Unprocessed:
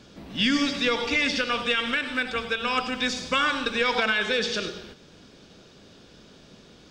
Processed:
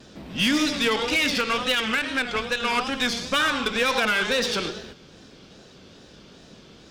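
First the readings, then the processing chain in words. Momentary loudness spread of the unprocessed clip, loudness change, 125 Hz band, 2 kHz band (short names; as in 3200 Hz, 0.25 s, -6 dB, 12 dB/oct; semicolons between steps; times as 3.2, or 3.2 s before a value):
5 LU, +1.5 dB, +3.0 dB, +1.0 dB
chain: wow and flutter 120 cents; added harmonics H 5 -23 dB, 8 -21 dB, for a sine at -11.5 dBFS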